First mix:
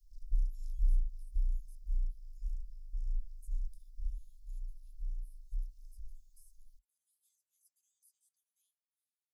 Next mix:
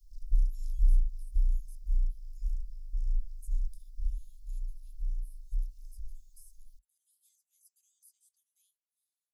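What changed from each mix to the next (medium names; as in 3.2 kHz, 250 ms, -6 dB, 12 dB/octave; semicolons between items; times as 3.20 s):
speech +7.5 dB; background +5.5 dB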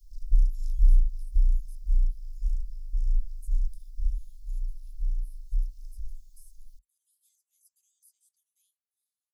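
background +5.0 dB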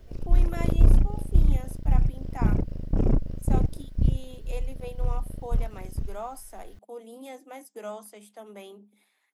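speech +11.5 dB; master: remove inverse Chebyshev band-stop 210–1100 Hz, stop band 80 dB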